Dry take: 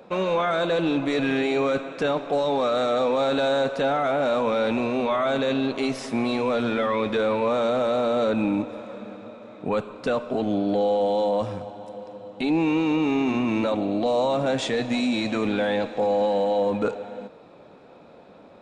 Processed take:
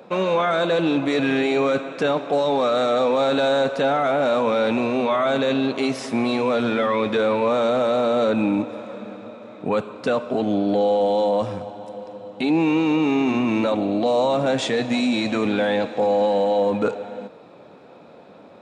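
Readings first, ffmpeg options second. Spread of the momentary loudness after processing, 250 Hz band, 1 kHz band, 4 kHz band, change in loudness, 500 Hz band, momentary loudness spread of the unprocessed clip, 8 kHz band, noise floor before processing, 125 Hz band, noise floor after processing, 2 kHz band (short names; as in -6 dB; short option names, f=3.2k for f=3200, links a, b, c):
11 LU, +3.0 dB, +3.0 dB, +3.0 dB, +3.0 dB, +3.0 dB, 11 LU, n/a, -49 dBFS, +2.5 dB, -46 dBFS, +3.0 dB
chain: -af "highpass=89,volume=3dB"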